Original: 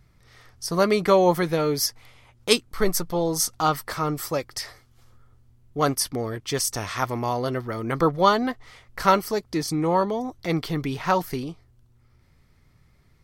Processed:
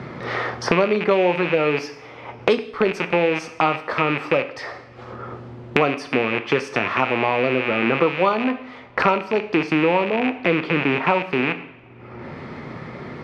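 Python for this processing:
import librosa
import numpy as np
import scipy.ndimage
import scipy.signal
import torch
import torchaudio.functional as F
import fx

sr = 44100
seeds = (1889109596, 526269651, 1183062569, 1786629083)

y = fx.rattle_buzz(x, sr, strikes_db=-37.0, level_db=-12.0)
y = fx.bandpass_edges(y, sr, low_hz=360.0, high_hz=3200.0)
y = fx.tilt_eq(y, sr, slope=-3.5)
y = fx.rev_double_slope(y, sr, seeds[0], early_s=0.52, late_s=1.7, knee_db=-28, drr_db=8.5)
y = fx.band_squash(y, sr, depth_pct=100)
y = y * librosa.db_to_amplitude(2.5)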